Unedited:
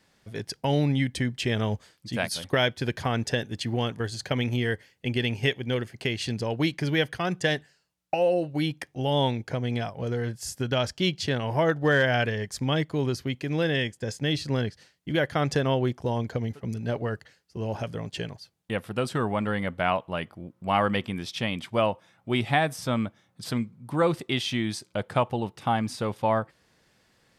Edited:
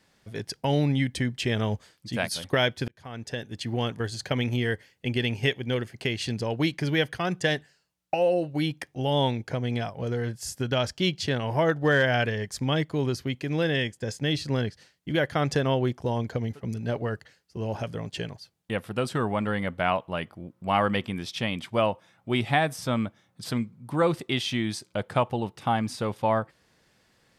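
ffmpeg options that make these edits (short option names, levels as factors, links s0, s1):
-filter_complex "[0:a]asplit=2[s0][s1];[s0]atrim=end=2.88,asetpts=PTS-STARTPTS,afade=t=out:st=2.876:d=0.004:c=hsin[s2];[s1]atrim=start=2.88,asetpts=PTS-STARTPTS,afade=t=in:d=0.99[s3];[s2][s3]concat=n=2:v=0:a=1"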